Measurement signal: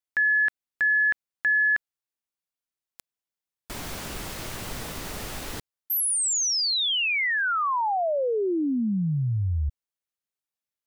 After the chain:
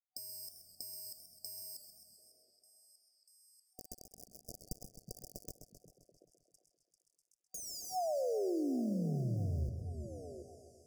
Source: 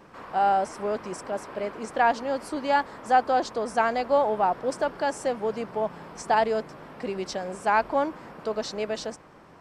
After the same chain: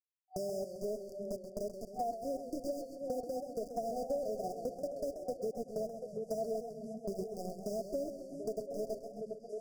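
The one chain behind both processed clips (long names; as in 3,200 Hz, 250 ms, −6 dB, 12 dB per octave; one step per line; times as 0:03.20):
harmonic-percussive split with one part muted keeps harmonic
centre clipping without the shift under −29 dBFS
on a send: echo through a band-pass that steps 366 ms, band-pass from 160 Hz, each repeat 1.4 octaves, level −9.5 dB
on the sum: brick-wall band-stop 750–4,700 Hz
downward compressor 4 to 1, threshold −44 dBFS
high-shelf EQ 4,100 Hz −6 dB
feedback echo with a swinging delay time 132 ms, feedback 65%, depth 109 cents, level −9.5 dB
level +6 dB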